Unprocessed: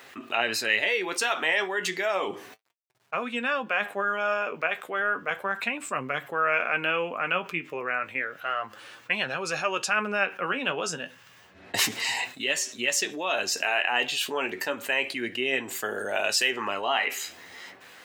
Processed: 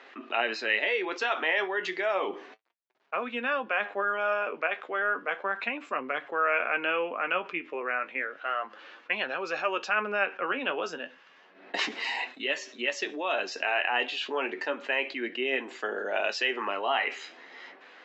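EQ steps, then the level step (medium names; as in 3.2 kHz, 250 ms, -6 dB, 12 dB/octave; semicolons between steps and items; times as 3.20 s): high-pass 250 Hz 24 dB/octave; brick-wall FIR low-pass 7.8 kHz; distance through air 220 m; 0.0 dB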